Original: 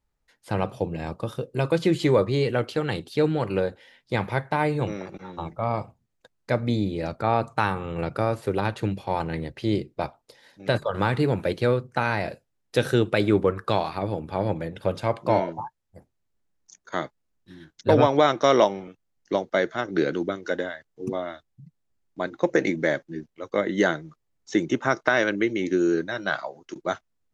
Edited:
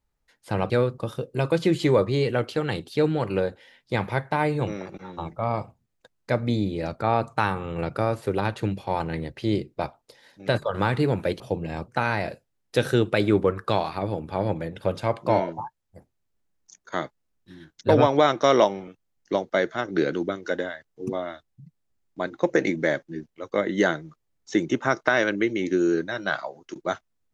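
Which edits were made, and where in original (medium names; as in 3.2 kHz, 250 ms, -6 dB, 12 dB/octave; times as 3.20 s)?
0.70–1.18 s: swap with 11.60–11.88 s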